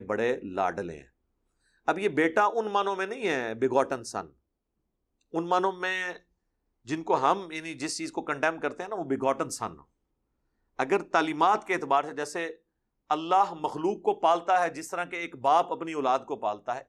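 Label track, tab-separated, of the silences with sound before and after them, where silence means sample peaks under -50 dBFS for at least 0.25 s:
1.050000	1.870000	silence
4.310000	5.330000	silence
6.200000	6.860000	silence
9.830000	10.790000	silence
12.560000	13.100000	silence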